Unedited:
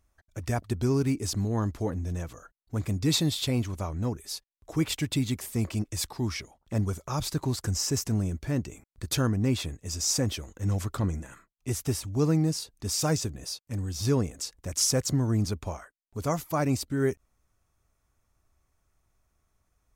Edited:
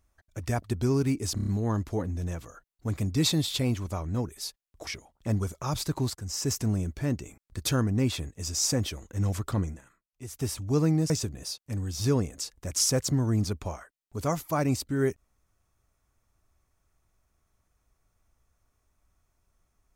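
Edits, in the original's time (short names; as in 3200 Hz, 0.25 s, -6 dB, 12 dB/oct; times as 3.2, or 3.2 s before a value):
1.35 stutter 0.03 s, 5 plays
4.75–6.33 cut
7.61–7.97 fade in, from -16 dB
11.06–11.99 dip -11 dB, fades 0.26 s
12.56–13.11 cut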